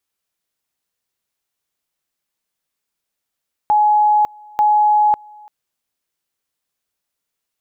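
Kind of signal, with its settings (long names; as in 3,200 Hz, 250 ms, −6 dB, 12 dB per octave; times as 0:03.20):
tone at two levels in turn 842 Hz −10 dBFS, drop 27.5 dB, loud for 0.55 s, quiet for 0.34 s, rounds 2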